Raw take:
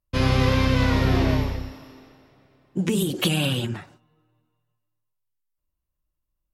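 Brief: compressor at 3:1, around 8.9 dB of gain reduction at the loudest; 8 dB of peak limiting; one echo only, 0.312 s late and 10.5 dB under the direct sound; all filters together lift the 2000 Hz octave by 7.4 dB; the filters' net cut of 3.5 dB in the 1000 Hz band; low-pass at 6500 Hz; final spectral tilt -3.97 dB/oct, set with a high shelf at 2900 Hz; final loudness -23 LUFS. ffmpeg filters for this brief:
-af "lowpass=6.5k,equalizer=f=1k:t=o:g=-7.5,equalizer=f=2k:t=o:g=7.5,highshelf=f=2.9k:g=8.5,acompressor=threshold=-27dB:ratio=3,alimiter=limit=-21dB:level=0:latency=1,aecho=1:1:312:0.299,volume=8dB"

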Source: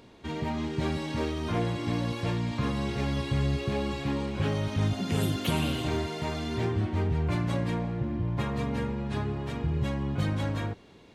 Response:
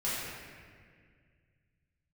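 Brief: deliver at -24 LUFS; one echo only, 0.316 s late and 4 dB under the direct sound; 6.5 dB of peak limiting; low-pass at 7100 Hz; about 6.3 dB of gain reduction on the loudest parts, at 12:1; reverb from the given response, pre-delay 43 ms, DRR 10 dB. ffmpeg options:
-filter_complex "[0:a]lowpass=7.1k,acompressor=threshold=-29dB:ratio=12,alimiter=level_in=3.5dB:limit=-24dB:level=0:latency=1,volume=-3.5dB,aecho=1:1:316:0.631,asplit=2[a][b];[1:a]atrim=start_sample=2205,adelay=43[c];[b][c]afir=irnorm=-1:irlink=0,volume=-17.5dB[d];[a][d]amix=inputs=2:normalize=0,volume=10.5dB"

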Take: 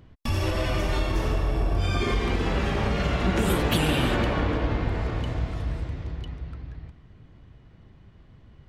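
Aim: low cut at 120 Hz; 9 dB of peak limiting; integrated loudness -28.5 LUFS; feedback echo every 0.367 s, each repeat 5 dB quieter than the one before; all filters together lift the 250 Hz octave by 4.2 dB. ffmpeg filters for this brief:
-af "highpass=120,equalizer=f=250:t=o:g=6,alimiter=limit=-18dB:level=0:latency=1,aecho=1:1:367|734|1101|1468|1835|2202|2569:0.562|0.315|0.176|0.0988|0.0553|0.031|0.0173,volume=-1.5dB"

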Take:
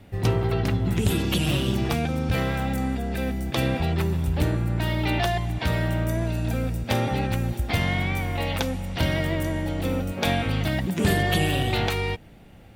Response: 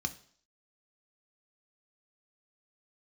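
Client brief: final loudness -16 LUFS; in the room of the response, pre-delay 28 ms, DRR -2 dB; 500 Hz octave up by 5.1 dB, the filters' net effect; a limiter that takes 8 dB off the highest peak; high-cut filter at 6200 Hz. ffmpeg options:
-filter_complex "[0:a]lowpass=6.2k,equalizer=f=500:t=o:g=6.5,alimiter=limit=-14.5dB:level=0:latency=1,asplit=2[a][b];[1:a]atrim=start_sample=2205,adelay=28[c];[b][c]afir=irnorm=-1:irlink=0,volume=-0.5dB[d];[a][d]amix=inputs=2:normalize=0,volume=3dB"

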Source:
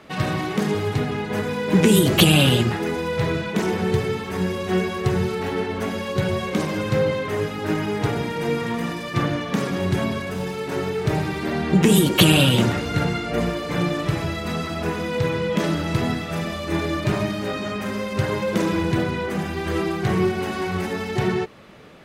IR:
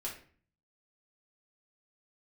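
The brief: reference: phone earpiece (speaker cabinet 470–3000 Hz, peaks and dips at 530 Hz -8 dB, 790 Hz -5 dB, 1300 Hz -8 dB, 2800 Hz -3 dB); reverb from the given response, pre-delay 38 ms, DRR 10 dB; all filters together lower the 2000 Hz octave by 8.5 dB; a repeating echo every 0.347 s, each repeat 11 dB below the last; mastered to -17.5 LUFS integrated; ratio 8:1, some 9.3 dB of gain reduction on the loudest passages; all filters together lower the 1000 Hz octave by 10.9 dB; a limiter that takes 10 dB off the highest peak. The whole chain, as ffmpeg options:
-filter_complex "[0:a]equalizer=f=1k:t=o:g=-6,equalizer=f=2k:t=o:g=-6,acompressor=threshold=-21dB:ratio=8,alimiter=limit=-21dB:level=0:latency=1,aecho=1:1:347|694|1041:0.282|0.0789|0.0221,asplit=2[a][b];[1:a]atrim=start_sample=2205,adelay=38[c];[b][c]afir=irnorm=-1:irlink=0,volume=-10.5dB[d];[a][d]amix=inputs=2:normalize=0,highpass=470,equalizer=f=530:t=q:w=4:g=-8,equalizer=f=790:t=q:w=4:g=-5,equalizer=f=1.3k:t=q:w=4:g=-8,equalizer=f=2.8k:t=q:w=4:g=-3,lowpass=f=3k:w=0.5412,lowpass=f=3k:w=1.3066,volume=20dB"

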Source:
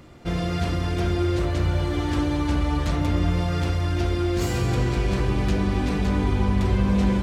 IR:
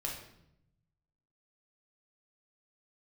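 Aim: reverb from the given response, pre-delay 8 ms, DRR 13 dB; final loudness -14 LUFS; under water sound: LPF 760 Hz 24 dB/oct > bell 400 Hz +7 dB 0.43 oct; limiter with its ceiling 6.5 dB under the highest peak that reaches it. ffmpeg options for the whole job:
-filter_complex "[0:a]alimiter=limit=-16.5dB:level=0:latency=1,asplit=2[a][b];[1:a]atrim=start_sample=2205,adelay=8[c];[b][c]afir=irnorm=-1:irlink=0,volume=-15dB[d];[a][d]amix=inputs=2:normalize=0,lowpass=f=760:w=0.5412,lowpass=f=760:w=1.3066,equalizer=f=400:t=o:w=0.43:g=7,volume=11dB"

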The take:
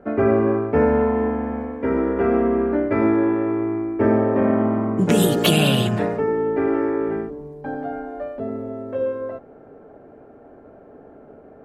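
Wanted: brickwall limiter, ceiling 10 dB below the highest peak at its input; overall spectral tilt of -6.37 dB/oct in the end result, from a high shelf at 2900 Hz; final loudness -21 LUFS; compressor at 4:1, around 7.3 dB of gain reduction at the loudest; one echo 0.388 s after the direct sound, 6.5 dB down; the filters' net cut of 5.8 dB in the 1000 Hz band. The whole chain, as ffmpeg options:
-af "equalizer=f=1k:t=o:g=-7.5,highshelf=f=2.9k:g=-6.5,acompressor=threshold=-22dB:ratio=4,alimiter=limit=-21.5dB:level=0:latency=1,aecho=1:1:388:0.473,volume=8.5dB"

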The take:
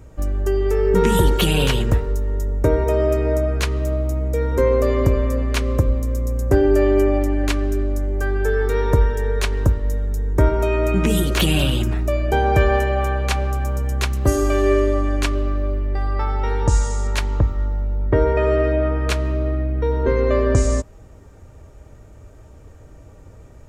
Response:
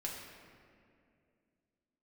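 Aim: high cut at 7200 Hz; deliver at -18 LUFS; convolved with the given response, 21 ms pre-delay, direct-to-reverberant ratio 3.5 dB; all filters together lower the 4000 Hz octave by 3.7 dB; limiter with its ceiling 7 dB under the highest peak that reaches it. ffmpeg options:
-filter_complex "[0:a]lowpass=7.2k,equalizer=f=4k:t=o:g=-5,alimiter=limit=-11dB:level=0:latency=1,asplit=2[a][b];[1:a]atrim=start_sample=2205,adelay=21[c];[b][c]afir=irnorm=-1:irlink=0,volume=-4dB[d];[a][d]amix=inputs=2:normalize=0,volume=1.5dB"

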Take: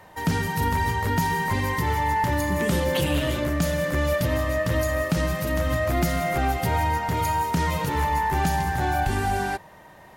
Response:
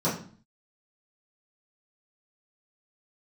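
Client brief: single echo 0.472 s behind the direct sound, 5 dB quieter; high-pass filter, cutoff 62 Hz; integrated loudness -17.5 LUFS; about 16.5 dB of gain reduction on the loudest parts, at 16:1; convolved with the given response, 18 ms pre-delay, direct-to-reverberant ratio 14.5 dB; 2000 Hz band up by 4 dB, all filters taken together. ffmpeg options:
-filter_complex "[0:a]highpass=62,equalizer=f=2k:t=o:g=4.5,acompressor=threshold=-35dB:ratio=16,aecho=1:1:472:0.562,asplit=2[a][b];[1:a]atrim=start_sample=2205,adelay=18[c];[b][c]afir=irnorm=-1:irlink=0,volume=-26.5dB[d];[a][d]amix=inputs=2:normalize=0,volume=19.5dB"

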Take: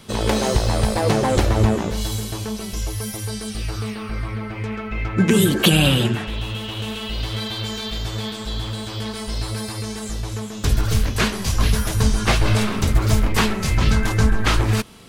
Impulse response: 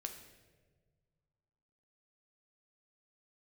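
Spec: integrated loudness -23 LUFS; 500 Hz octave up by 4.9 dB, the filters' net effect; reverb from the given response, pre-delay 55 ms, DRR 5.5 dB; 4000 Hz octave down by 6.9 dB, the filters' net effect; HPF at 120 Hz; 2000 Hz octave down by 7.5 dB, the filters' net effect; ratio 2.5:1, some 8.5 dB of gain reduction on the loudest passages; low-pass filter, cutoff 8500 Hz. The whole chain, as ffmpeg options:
-filter_complex "[0:a]highpass=120,lowpass=8.5k,equalizer=f=500:t=o:g=6.5,equalizer=f=2k:t=o:g=-9,equalizer=f=4k:t=o:g=-5.5,acompressor=threshold=-24dB:ratio=2.5,asplit=2[a][b];[1:a]atrim=start_sample=2205,adelay=55[c];[b][c]afir=irnorm=-1:irlink=0,volume=-3dB[d];[a][d]amix=inputs=2:normalize=0,volume=3dB"

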